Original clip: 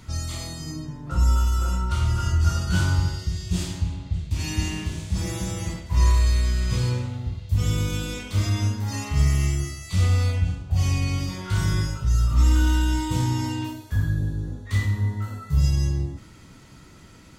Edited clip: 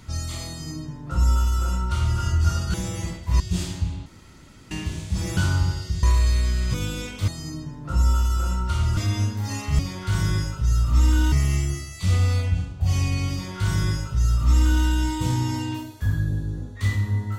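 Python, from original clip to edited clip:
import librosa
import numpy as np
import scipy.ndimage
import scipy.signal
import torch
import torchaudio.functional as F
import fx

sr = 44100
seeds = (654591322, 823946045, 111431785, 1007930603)

y = fx.edit(x, sr, fx.duplicate(start_s=0.5, length_s=1.69, to_s=8.4),
    fx.swap(start_s=2.74, length_s=0.66, other_s=5.37, other_length_s=0.66),
    fx.room_tone_fill(start_s=4.06, length_s=0.65),
    fx.cut(start_s=6.74, length_s=1.12),
    fx.duplicate(start_s=11.22, length_s=1.53, to_s=9.22), tone=tone)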